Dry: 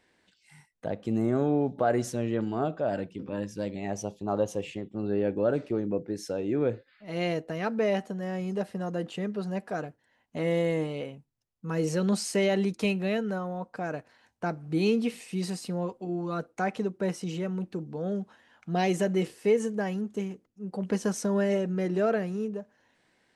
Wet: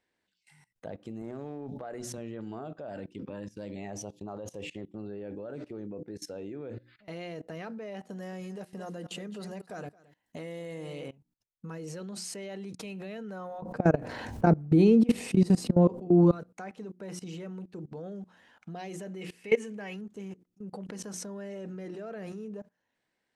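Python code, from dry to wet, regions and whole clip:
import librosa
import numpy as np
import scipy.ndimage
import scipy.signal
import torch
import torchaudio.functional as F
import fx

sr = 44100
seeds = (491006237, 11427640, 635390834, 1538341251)

y = fx.chain(x, sr, fx.highpass(hz=52.0, slope=24),
    fx.transient(attack_db=-6, sustain_db=-10),
    fx.sustainer(db_per_s=110.0), at=(1.22, 2.18))
y = fx.chain(y, sr, fx.high_shelf(hz=4900.0, db=9.0),
    fx.echo_single(ms=221, db=-14.0), at=(8.1, 11.08))
y = fx.chain(y, sr, fx.tilt_shelf(db=8.0, hz=760.0),
    fx.env_flatten(amount_pct=70), at=(13.62, 16.32))
y = fx.chain(y, sr, fx.peak_eq(hz=2400.0, db=11.5, octaves=0.8),
    fx.hum_notches(base_hz=60, count=7), at=(19.21, 20.01))
y = fx.hum_notches(y, sr, base_hz=60, count=6)
y = fx.level_steps(y, sr, step_db=21)
y = F.gain(torch.from_numpy(y), 2.5).numpy()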